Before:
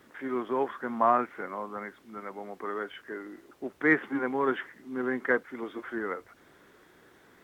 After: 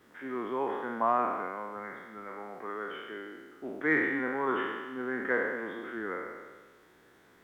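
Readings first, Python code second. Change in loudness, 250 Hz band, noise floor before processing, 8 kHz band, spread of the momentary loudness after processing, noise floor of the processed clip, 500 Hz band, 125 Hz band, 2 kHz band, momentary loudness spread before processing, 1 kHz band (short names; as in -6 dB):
-2.0 dB, -3.0 dB, -60 dBFS, n/a, 16 LU, -61 dBFS, -2.5 dB, -3.0 dB, -0.5 dB, 16 LU, -2.0 dB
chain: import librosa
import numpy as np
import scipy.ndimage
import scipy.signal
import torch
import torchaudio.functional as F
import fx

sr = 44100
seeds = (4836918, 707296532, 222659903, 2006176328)

y = fx.spec_trails(x, sr, decay_s=1.44)
y = y * 10.0 ** (-5.5 / 20.0)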